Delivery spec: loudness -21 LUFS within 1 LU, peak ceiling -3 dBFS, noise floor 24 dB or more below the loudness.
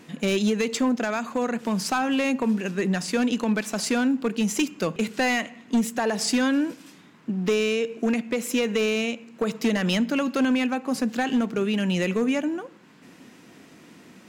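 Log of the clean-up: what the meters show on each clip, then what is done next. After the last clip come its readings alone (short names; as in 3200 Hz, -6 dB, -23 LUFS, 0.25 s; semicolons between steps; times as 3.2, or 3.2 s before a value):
clipped 1.5%; flat tops at -16.5 dBFS; loudness -25.0 LUFS; peak -16.5 dBFS; loudness target -21.0 LUFS
-> clip repair -16.5 dBFS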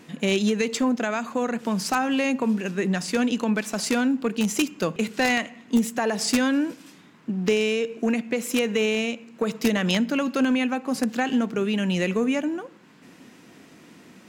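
clipped 0.0%; loudness -24.5 LUFS; peak -7.5 dBFS; loudness target -21.0 LUFS
-> gain +3.5 dB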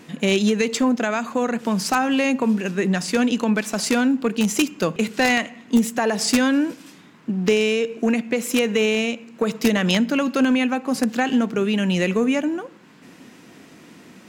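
loudness -21.0 LUFS; peak -4.0 dBFS; noise floor -47 dBFS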